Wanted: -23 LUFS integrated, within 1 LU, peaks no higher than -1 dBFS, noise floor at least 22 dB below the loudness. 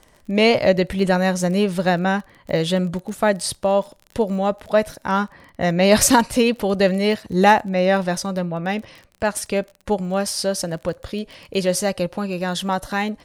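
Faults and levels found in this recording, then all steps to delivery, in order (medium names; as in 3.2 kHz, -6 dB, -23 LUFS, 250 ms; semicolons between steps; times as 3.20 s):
tick rate 25 per s; loudness -20.5 LUFS; peak level -1.0 dBFS; loudness target -23.0 LUFS
-> de-click; trim -2.5 dB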